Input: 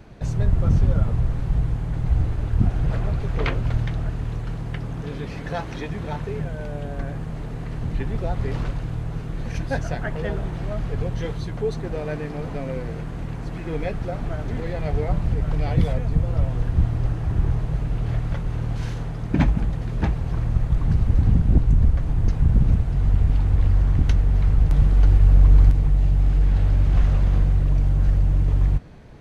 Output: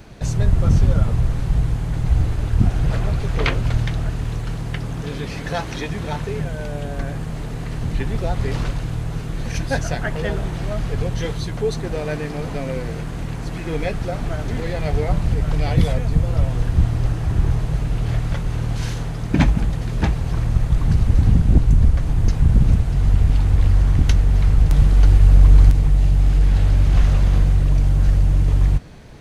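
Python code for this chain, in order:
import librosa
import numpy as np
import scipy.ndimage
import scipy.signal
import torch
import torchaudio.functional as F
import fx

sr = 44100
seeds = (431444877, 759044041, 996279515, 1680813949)

y = fx.high_shelf(x, sr, hz=3200.0, db=10.0)
y = y * librosa.db_to_amplitude(3.0)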